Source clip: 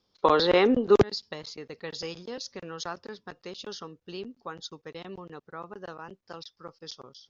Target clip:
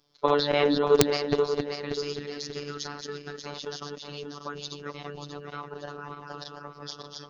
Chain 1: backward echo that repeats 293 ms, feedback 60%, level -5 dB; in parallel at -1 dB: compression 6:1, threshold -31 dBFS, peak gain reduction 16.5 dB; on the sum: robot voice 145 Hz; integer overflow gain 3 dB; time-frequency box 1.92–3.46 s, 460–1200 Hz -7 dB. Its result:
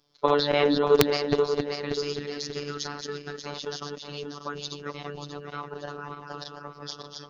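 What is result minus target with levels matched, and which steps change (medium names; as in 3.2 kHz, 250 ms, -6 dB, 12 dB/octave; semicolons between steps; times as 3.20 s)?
compression: peak gain reduction -7.5 dB
change: compression 6:1, threshold -40 dBFS, peak gain reduction 24 dB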